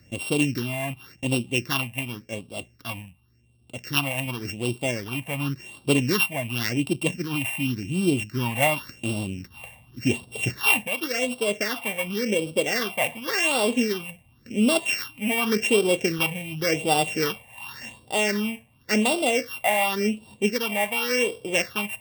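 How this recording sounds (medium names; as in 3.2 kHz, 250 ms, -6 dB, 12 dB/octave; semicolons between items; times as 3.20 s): a buzz of ramps at a fixed pitch in blocks of 16 samples; phasing stages 6, 0.9 Hz, lowest notch 360–1800 Hz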